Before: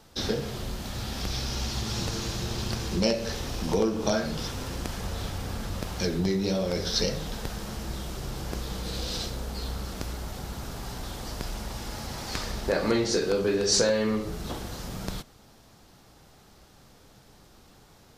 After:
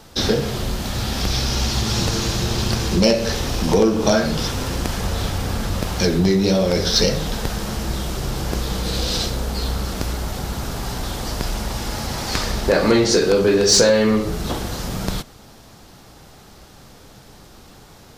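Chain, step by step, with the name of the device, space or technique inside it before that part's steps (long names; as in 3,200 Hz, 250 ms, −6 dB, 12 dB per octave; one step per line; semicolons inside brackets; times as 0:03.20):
parallel distortion (in parallel at −5.5 dB: hard clipping −22.5 dBFS, distortion −13 dB)
on the sum: level +6.5 dB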